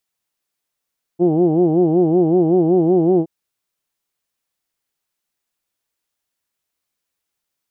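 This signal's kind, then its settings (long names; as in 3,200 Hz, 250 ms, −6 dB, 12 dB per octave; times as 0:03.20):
vowel from formants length 2.07 s, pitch 165 Hz, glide +1 semitone, vibrato depth 1.45 semitones, F1 360 Hz, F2 750 Hz, F3 3,000 Hz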